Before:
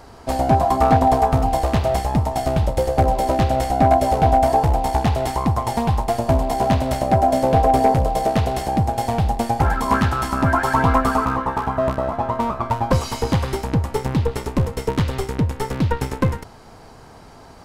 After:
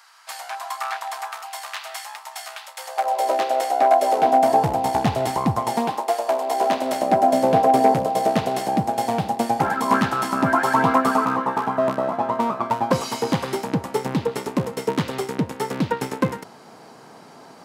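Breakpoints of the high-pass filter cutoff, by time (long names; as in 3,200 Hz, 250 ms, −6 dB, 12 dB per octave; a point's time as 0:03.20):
high-pass filter 24 dB per octave
0:02.75 1,200 Hz
0:03.31 410 Hz
0:03.97 410 Hz
0:04.73 120 Hz
0:05.56 120 Hz
0:06.21 480 Hz
0:07.40 160 Hz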